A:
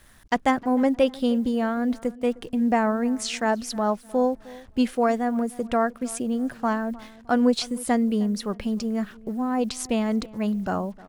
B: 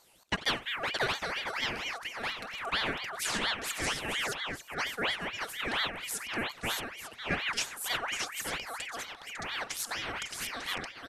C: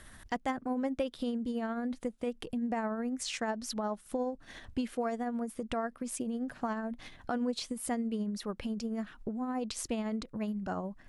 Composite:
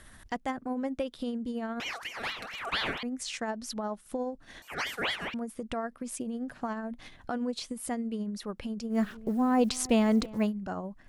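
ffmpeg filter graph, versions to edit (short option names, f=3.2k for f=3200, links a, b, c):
-filter_complex "[1:a]asplit=2[a][b];[2:a]asplit=4[c][d][e][f];[c]atrim=end=1.802[g];[a]atrim=start=1.798:end=3.032[h];[d]atrim=start=3.028:end=4.622[i];[b]atrim=start=4.618:end=5.342[j];[e]atrim=start=5.338:end=8.99[k];[0:a]atrim=start=8.89:end=10.52[l];[f]atrim=start=10.42[m];[g][h]acrossfade=d=0.004:c1=hsin:c2=hsin[n];[n][i]acrossfade=d=0.004:c1=hsin:c2=hsin[o];[o][j]acrossfade=d=0.004:c1=hsin:c2=hsin[p];[p][k]acrossfade=d=0.004:c1=hsin:c2=hsin[q];[q][l]acrossfade=d=0.1:c1=tri:c2=tri[r];[r][m]acrossfade=d=0.1:c1=tri:c2=tri"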